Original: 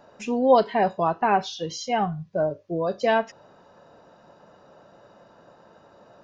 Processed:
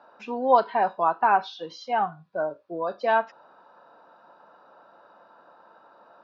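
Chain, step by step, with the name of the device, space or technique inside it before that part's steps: phone earpiece (speaker cabinet 380–3900 Hz, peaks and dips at 410 Hz -6 dB, 580 Hz -4 dB, 940 Hz +4 dB, 1400 Hz +6 dB, 2000 Hz -8 dB, 3000 Hz -7 dB)

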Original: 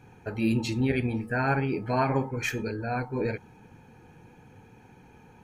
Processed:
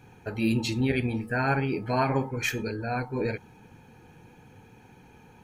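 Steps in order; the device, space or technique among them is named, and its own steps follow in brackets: presence and air boost (bell 3600 Hz +3.5 dB 0.99 oct; high shelf 9700 Hz +6.5 dB)

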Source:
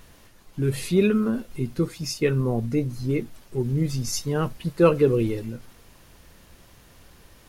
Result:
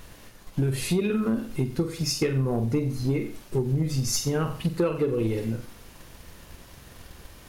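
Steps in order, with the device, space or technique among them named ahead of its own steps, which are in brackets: flutter echo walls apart 7.7 m, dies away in 0.37 s; drum-bus smash (transient shaper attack +5 dB, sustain 0 dB; compressor 6:1, threshold -23 dBFS, peak gain reduction 14 dB; soft clip -18 dBFS, distortion -21 dB); gain +3 dB

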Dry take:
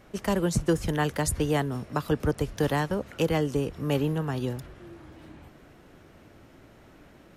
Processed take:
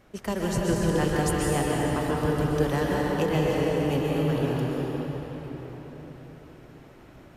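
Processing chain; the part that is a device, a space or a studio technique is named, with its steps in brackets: cathedral (reverb RT60 4.7 s, pre-delay 0.118 s, DRR -4.5 dB); gain -3.5 dB

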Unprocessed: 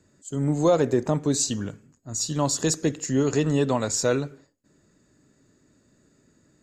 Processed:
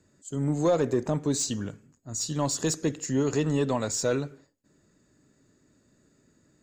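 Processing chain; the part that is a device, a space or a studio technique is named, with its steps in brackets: saturation between pre-emphasis and de-emphasis (high shelf 4400 Hz +10.5 dB; soft clip -11 dBFS, distortion -20 dB; high shelf 4400 Hz -10.5 dB); gain -2.5 dB

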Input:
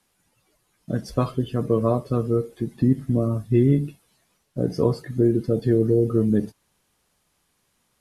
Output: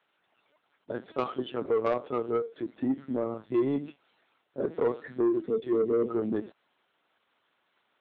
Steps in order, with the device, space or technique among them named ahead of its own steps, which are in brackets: 5.47–6.07 elliptic band-stop 440–2000 Hz; talking toy (LPC vocoder at 8 kHz pitch kept; HPF 350 Hz 12 dB/oct; bell 1400 Hz +4.5 dB 0.35 oct; soft clip -19 dBFS, distortion -15 dB)

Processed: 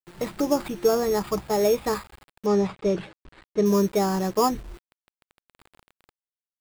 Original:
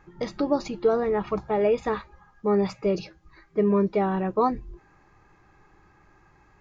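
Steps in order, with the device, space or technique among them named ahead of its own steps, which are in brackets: early 8-bit sampler (sample-rate reducer 6000 Hz, jitter 0%; bit-crush 8-bit); 2.46–3.66 air absorption 110 m; gain +1 dB

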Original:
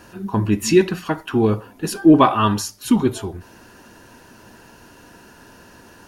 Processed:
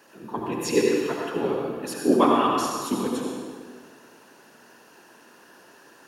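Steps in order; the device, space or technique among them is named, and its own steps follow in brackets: whispering ghost (whisperiser; HPF 280 Hz 12 dB/oct; reverb RT60 1.7 s, pre-delay 64 ms, DRR -1 dB); gain -8 dB

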